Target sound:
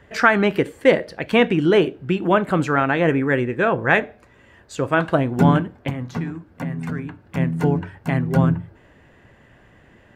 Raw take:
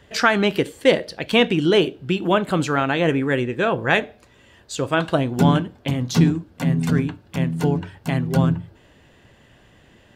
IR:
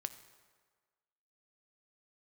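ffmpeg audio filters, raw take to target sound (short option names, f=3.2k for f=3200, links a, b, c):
-filter_complex "[0:a]highshelf=f=2.6k:t=q:w=1.5:g=-7,asettb=1/sr,asplit=3[a][b][c];[a]atrim=end=5.894[d];[b]atrim=start=5.89:end=7.26,asetpts=PTS-STARTPTS,afade=t=in:d=0.004:c=qsin,afade=t=out:st=1.366:d=0.004:c=qsin,acrossover=split=710|2400[e][f][g];[e]acompressor=threshold=-27dB:ratio=4[h];[f]acompressor=threshold=-38dB:ratio=4[i];[g]acompressor=threshold=-51dB:ratio=4[j];[h][i][j]amix=inputs=3:normalize=0[k];[c]atrim=start=7.256[l];[d][k]acrossfade=d=0.004:c1=hsin:c2=qsin[m];[m][l]acrossfade=d=0.004:c1=qsin:c2=hsin,volume=1dB"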